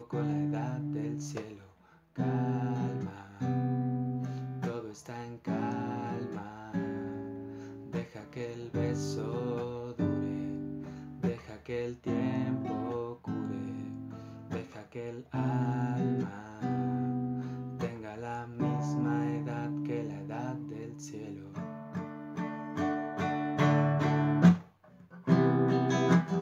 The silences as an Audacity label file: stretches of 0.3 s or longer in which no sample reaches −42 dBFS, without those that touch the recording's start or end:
1.560000	2.180000	silence
24.630000	25.140000	silence